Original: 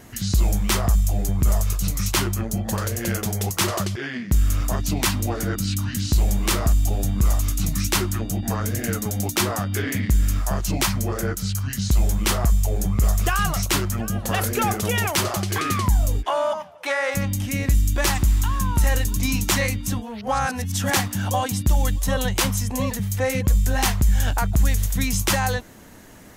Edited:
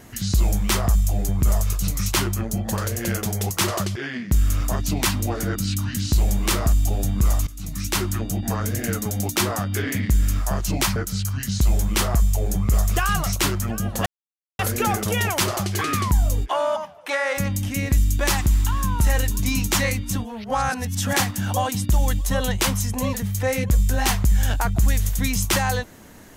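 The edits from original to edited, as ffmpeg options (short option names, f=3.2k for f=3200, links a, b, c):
-filter_complex "[0:a]asplit=4[a][b][c][d];[a]atrim=end=7.47,asetpts=PTS-STARTPTS,afade=t=out:st=7.466:d=0.004:c=hsin:silence=0.105925[e];[b]atrim=start=7.47:end=10.962,asetpts=PTS-STARTPTS,afade=t=in:d=0.63:silence=0.105925[f];[c]atrim=start=11.258:end=14.36,asetpts=PTS-STARTPTS,afade=t=out:st=3.098:d=0.004:c=hsin,apad=pad_dur=0.53[g];[d]atrim=start=14.36,asetpts=PTS-STARTPTS,afade=t=in:d=0.004:c=hsin[h];[e][f]concat=n=2:v=0:a=1[i];[g][h]concat=n=2:v=0:a=1[j];[i][j]acrossfade=d=0.004:c1=hsin:c2=hsin"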